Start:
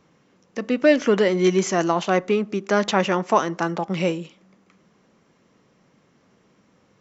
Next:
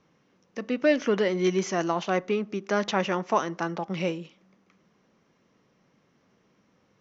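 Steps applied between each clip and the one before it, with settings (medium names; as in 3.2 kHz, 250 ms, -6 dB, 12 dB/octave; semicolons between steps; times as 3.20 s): Chebyshev low-pass 6.2 kHz, order 4; trim -5 dB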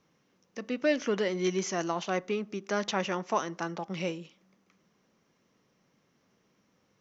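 treble shelf 5.2 kHz +9.5 dB; trim -5 dB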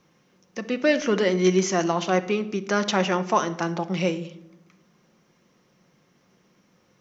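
simulated room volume 2600 m³, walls furnished, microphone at 0.91 m; trim +7 dB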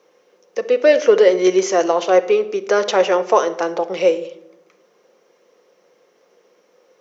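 resonant high-pass 470 Hz, resonance Q 4.5; trim +2.5 dB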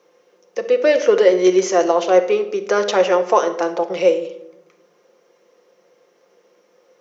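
simulated room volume 1900 m³, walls furnished, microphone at 0.84 m; trim -1 dB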